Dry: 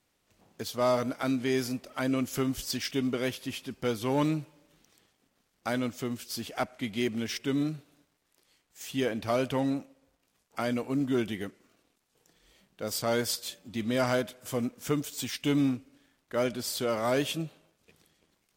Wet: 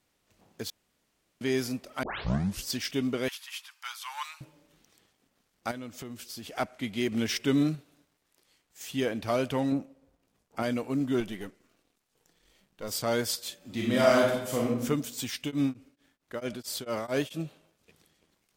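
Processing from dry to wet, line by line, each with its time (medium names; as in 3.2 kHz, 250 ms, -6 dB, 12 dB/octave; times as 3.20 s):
0.70–1.41 s: room tone
2.03 s: tape start 0.61 s
3.28–4.41 s: steep high-pass 930 Hz 48 dB/octave
5.71–6.51 s: compression 4:1, threshold -38 dBFS
7.12–7.75 s: gain +4 dB
9.72–10.63 s: tilt shelf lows +5 dB, about 900 Hz
11.20–12.89 s: partial rectifier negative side -7 dB
13.57–14.81 s: reverb throw, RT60 0.86 s, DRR -3.5 dB
15.41–17.45 s: tremolo of two beating tones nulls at 4.5 Hz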